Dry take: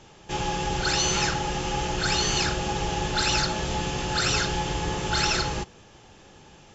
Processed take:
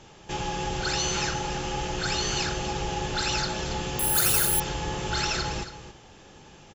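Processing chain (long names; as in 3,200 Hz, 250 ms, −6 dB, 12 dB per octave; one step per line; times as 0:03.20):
in parallel at 0 dB: downward compressor, threshold −34 dBFS, peak gain reduction 13.5 dB
on the sum: single-tap delay 278 ms −12 dB
0:03.99–0:04.60: bad sample-rate conversion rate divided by 4×, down filtered, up zero stuff
level −5.5 dB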